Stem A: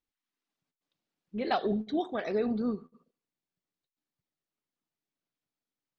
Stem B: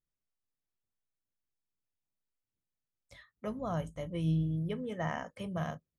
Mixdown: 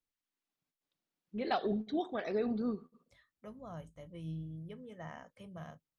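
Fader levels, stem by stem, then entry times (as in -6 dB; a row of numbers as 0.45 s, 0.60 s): -4.0 dB, -11.5 dB; 0.00 s, 0.00 s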